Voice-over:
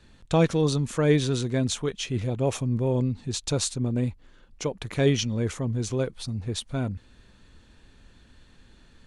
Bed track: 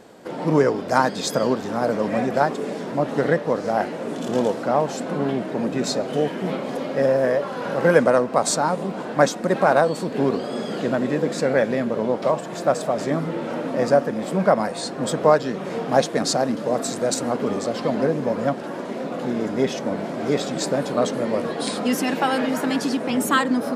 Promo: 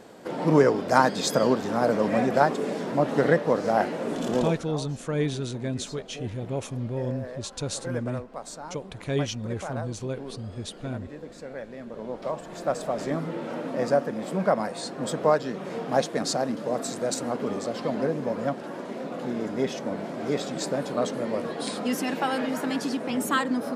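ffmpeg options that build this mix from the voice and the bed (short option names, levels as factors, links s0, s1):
-filter_complex "[0:a]adelay=4100,volume=0.531[s0];[1:a]volume=3.98,afade=t=out:st=4.26:d=0.41:silence=0.133352,afade=t=in:st=11.73:d=1.23:silence=0.223872[s1];[s0][s1]amix=inputs=2:normalize=0"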